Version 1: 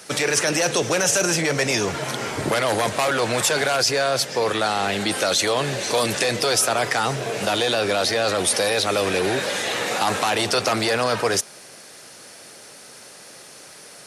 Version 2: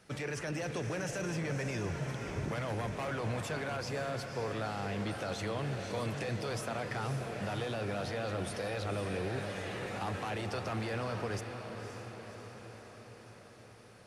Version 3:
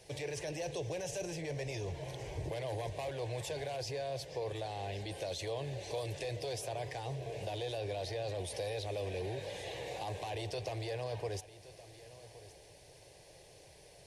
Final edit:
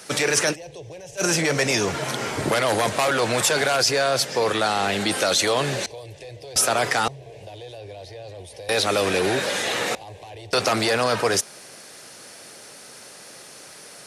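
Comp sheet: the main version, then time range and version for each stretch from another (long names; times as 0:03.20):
1
0:00.53–0:01.20: punch in from 3, crossfade 0.06 s
0:05.86–0:06.56: punch in from 3
0:07.08–0:08.69: punch in from 3
0:09.95–0:10.53: punch in from 3
not used: 2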